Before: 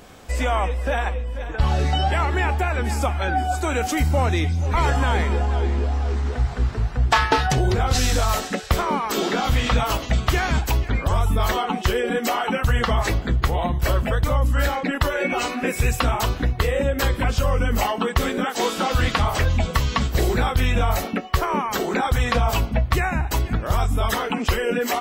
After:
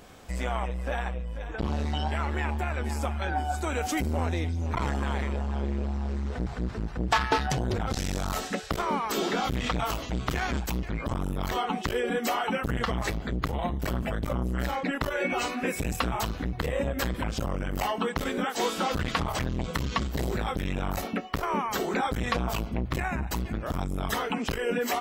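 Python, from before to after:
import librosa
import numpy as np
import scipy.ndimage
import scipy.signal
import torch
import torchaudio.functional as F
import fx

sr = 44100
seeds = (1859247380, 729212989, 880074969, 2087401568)

y = fx.transformer_sat(x, sr, knee_hz=340.0)
y = y * 10.0 ** (-5.0 / 20.0)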